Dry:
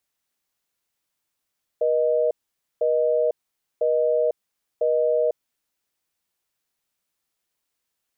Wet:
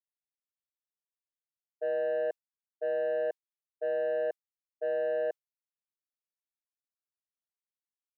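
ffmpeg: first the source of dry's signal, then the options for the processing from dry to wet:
-f lavfi -i "aevalsrc='0.0944*(sin(2*PI*480*t)+sin(2*PI*620*t))*clip(min(mod(t,1),0.5-mod(t,1))/0.005,0,1)':d=4:s=44100"
-af "highpass=f=700:p=1,agate=range=0.0224:threshold=0.0794:ratio=3:detection=peak,asoftclip=type=tanh:threshold=0.0531"

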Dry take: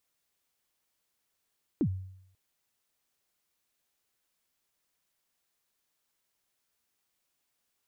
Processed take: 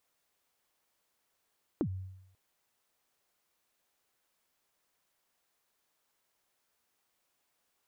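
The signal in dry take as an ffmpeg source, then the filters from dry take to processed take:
-f lavfi -i "aevalsrc='0.0841*pow(10,-3*t/0.73)*sin(2*PI*(360*0.071/log(94/360)*(exp(log(94/360)*min(t,0.071)/0.071)-1)+94*max(t-0.071,0)))':d=0.54:s=44100"
-af "equalizer=f=770:t=o:w=2.7:g=6,acompressor=threshold=0.0282:ratio=6"

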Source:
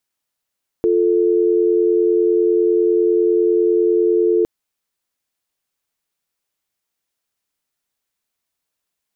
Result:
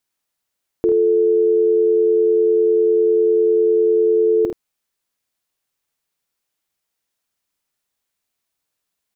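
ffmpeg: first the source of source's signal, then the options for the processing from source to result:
-f lavfi -i "aevalsrc='0.178*(sin(2*PI*350*t)+sin(2*PI*440*t))':d=3.61:s=44100"
-af "aecho=1:1:50|78:0.422|0.282"

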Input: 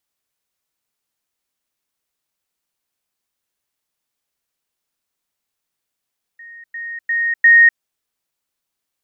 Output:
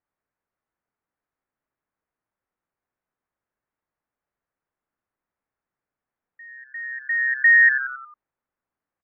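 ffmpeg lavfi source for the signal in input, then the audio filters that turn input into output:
-f lavfi -i "aevalsrc='pow(10,(-35.5+10*floor(t/0.35))/20)*sin(2*PI*1860*t)*clip(min(mod(t,0.35),0.25-mod(t,0.35))/0.005,0,1)':d=1.4:s=44100"
-filter_complex "[0:a]asplit=2[s0][s1];[s1]asplit=5[s2][s3][s4][s5][s6];[s2]adelay=90,afreqshift=-130,volume=0.266[s7];[s3]adelay=180,afreqshift=-260,volume=0.124[s8];[s4]adelay=270,afreqshift=-390,volume=0.0589[s9];[s5]adelay=360,afreqshift=-520,volume=0.0275[s10];[s6]adelay=450,afreqshift=-650,volume=0.013[s11];[s7][s8][s9][s10][s11]amix=inputs=5:normalize=0[s12];[s0][s12]amix=inputs=2:normalize=0,asoftclip=type=hard:threshold=0.447,lowpass=f=1800:w=0.5412,lowpass=f=1800:w=1.3066"

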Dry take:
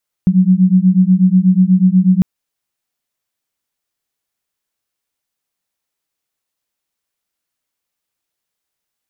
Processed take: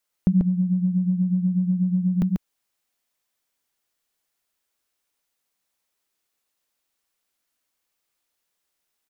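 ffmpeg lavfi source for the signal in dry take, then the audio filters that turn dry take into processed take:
-f lavfi -i "aevalsrc='0.299*(sin(2*PI*181*t)+sin(2*PI*189.2*t))':d=1.95:s=44100"
-filter_complex "[0:a]equalizer=f=110:w=1.1:g=-6.5,acompressor=threshold=0.158:ratio=4,asplit=2[s0][s1];[s1]aecho=0:1:140:0.631[s2];[s0][s2]amix=inputs=2:normalize=0"

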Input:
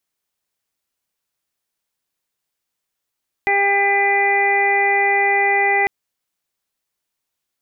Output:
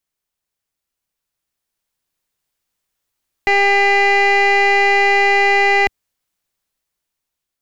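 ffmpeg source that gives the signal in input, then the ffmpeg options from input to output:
-f lavfi -i "aevalsrc='0.0794*sin(2*PI*400*t)+0.126*sin(2*PI*800*t)+0.0126*sin(2*PI*1200*t)+0.0224*sin(2*PI*1600*t)+0.15*sin(2*PI*2000*t)+0.0596*sin(2*PI*2400*t)':d=2.4:s=44100"
-af "lowshelf=f=82:g=10,dynaudnorm=f=730:g=5:m=2.51,aeval=exprs='(tanh(2*val(0)+0.6)-tanh(0.6))/2':c=same"

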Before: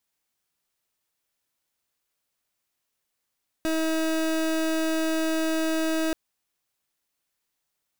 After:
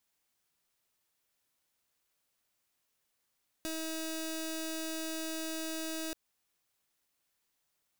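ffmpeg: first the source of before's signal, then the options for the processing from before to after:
-f lavfi -i "aevalsrc='0.0562*(2*lt(mod(320*t,1),0.3)-1)':d=2.48:s=44100"
-filter_complex "[0:a]acrossover=split=3300[s0][s1];[s0]alimiter=level_in=3.35:limit=0.0631:level=0:latency=1:release=29,volume=0.299[s2];[s2][s1]amix=inputs=2:normalize=0,acompressor=threshold=0.00891:ratio=1.5"

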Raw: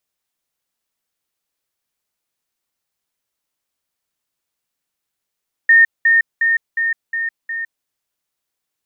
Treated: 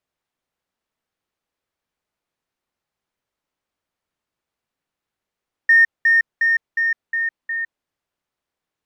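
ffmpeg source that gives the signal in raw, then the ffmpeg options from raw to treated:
-f lavfi -i "aevalsrc='pow(10,(-6-3*floor(t/0.36))/20)*sin(2*PI*1830*t)*clip(min(mod(t,0.36),0.16-mod(t,0.36))/0.005,0,1)':d=2.16:s=44100"
-filter_complex "[0:a]asplit=2[s0][s1];[s1]asoftclip=type=hard:threshold=0.112,volume=0.531[s2];[s0][s2]amix=inputs=2:normalize=0,lowpass=f=1600:p=1"

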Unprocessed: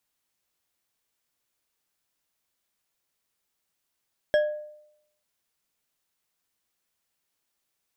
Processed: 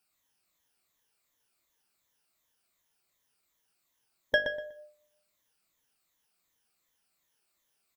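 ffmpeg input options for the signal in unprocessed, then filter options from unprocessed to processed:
-f lavfi -i "aevalsrc='0.158*pow(10,-3*t/0.78)*sin(2*PI*602*t)+0.0596*pow(10,-3*t/0.384)*sin(2*PI*1659.7*t)+0.0224*pow(10,-3*t/0.239)*sin(2*PI*3253.2*t)+0.00841*pow(10,-3*t/0.168)*sin(2*PI*5377.7*t)+0.00316*pow(10,-3*t/0.127)*sin(2*PI*8030.7*t)':d=0.89:s=44100"
-filter_complex "[0:a]afftfilt=real='re*pow(10,12/40*sin(2*PI*(1.1*log(max(b,1)*sr/1024/100)/log(2)-(-2.7)*(pts-256)/sr)))':imag='im*pow(10,12/40*sin(2*PI*(1.1*log(max(b,1)*sr/1024/100)/log(2)-(-2.7)*(pts-256)/sr)))':win_size=1024:overlap=0.75,bandreject=f=50.05:t=h:w=4,bandreject=f=100.1:t=h:w=4,bandreject=f=150.15:t=h:w=4,bandreject=f=200.2:t=h:w=4,bandreject=f=250.25:t=h:w=4,bandreject=f=300.3:t=h:w=4,bandreject=f=350.35:t=h:w=4,bandreject=f=400.4:t=h:w=4,bandreject=f=450.45:t=h:w=4,bandreject=f=500.5:t=h:w=4,bandreject=f=550.55:t=h:w=4,bandreject=f=600.6:t=h:w=4,bandreject=f=650.65:t=h:w=4,bandreject=f=700.7:t=h:w=4,bandreject=f=750.75:t=h:w=4,bandreject=f=800.8:t=h:w=4,asplit=2[s0][s1];[s1]adelay=122,lowpass=f=4200:p=1,volume=0.447,asplit=2[s2][s3];[s3]adelay=122,lowpass=f=4200:p=1,volume=0.24,asplit=2[s4][s5];[s5]adelay=122,lowpass=f=4200:p=1,volume=0.24[s6];[s2][s4][s6]amix=inputs=3:normalize=0[s7];[s0][s7]amix=inputs=2:normalize=0"

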